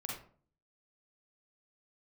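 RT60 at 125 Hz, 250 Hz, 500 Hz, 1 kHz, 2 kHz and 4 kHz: 0.65 s, 0.60 s, 0.50 s, 0.45 s, 0.35 s, 0.25 s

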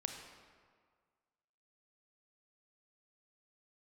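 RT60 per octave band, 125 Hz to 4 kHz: 1.7 s, 1.7 s, 1.8 s, 1.8 s, 1.5 s, 1.1 s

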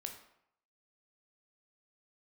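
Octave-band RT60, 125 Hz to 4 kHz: 0.70 s, 0.65 s, 0.70 s, 0.75 s, 0.65 s, 0.55 s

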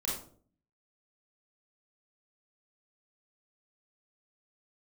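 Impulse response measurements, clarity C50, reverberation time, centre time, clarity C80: 1.5 dB, 0.50 s, 49 ms, 8.0 dB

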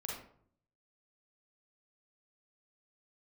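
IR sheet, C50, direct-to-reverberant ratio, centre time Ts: 0.5 dB, -3.0 dB, 49 ms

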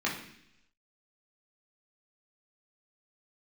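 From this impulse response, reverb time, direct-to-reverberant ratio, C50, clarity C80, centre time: 0.70 s, -5.0 dB, 6.5 dB, 10.0 dB, 32 ms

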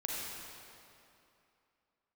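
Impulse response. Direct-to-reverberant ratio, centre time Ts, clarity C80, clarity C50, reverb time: -4.0 dB, 158 ms, -1.0 dB, -2.5 dB, 2.7 s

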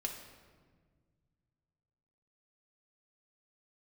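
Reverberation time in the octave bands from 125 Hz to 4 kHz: 3.1 s, 2.4 s, 1.8 s, 1.4 s, 1.3 s, 1.0 s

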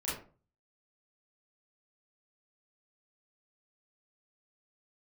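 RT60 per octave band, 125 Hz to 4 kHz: 0.60 s, 0.45 s, 0.40 s, 0.35 s, 0.30 s, 0.20 s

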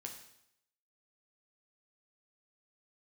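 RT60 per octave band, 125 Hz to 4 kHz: 0.80 s, 0.75 s, 0.75 s, 0.75 s, 0.75 s, 0.75 s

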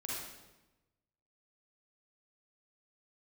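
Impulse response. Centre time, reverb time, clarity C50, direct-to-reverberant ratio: 87 ms, 1.0 s, -3.5 dB, -6.0 dB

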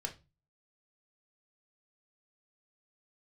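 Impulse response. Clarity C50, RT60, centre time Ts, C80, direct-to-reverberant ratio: 15.0 dB, 0.25 s, 10 ms, 22.5 dB, 2.0 dB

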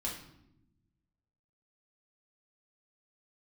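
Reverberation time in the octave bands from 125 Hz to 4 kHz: 1.7 s, 1.5 s, 1.0 s, 0.75 s, 0.65 s, 0.60 s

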